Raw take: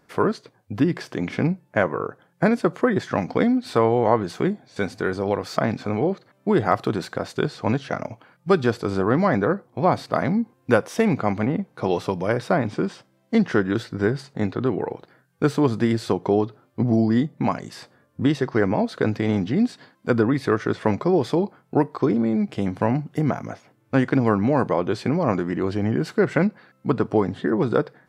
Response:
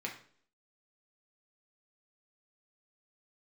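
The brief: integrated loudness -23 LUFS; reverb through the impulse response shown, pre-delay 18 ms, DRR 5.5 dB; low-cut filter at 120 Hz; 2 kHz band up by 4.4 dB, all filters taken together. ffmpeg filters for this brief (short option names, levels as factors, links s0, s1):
-filter_complex "[0:a]highpass=120,equalizer=f=2000:t=o:g=6,asplit=2[s0][s1];[1:a]atrim=start_sample=2205,adelay=18[s2];[s1][s2]afir=irnorm=-1:irlink=0,volume=0.422[s3];[s0][s3]amix=inputs=2:normalize=0,volume=0.841"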